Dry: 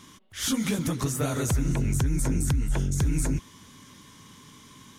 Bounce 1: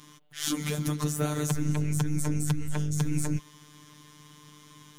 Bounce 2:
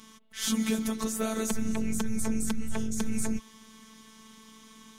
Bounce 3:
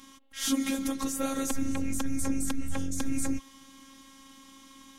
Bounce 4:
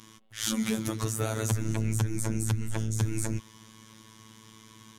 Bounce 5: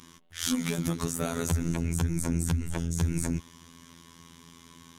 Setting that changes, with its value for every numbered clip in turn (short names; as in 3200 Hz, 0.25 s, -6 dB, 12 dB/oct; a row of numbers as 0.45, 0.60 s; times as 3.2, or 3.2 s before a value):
robotiser, frequency: 150, 220, 270, 110, 84 Hz